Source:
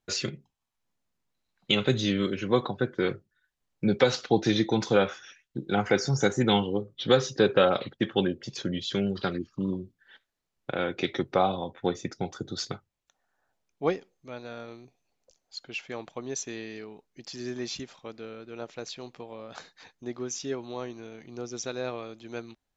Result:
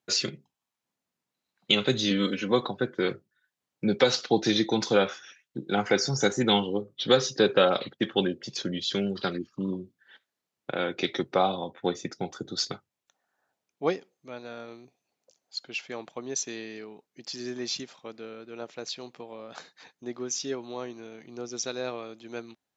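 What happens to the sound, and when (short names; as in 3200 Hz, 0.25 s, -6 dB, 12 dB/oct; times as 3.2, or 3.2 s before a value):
2.1–2.52 comb 4 ms
whole clip: HPF 150 Hz 12 dB/oct; dynamic EQ 4800 Hz, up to +6 dB, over -47 dBFS, Q 1.3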